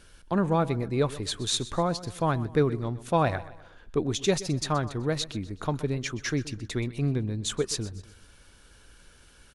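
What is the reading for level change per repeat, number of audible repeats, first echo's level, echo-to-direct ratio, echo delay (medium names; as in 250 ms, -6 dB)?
-7.5 dB, 3, -17.0 dB, -16.0 dB, 126 ms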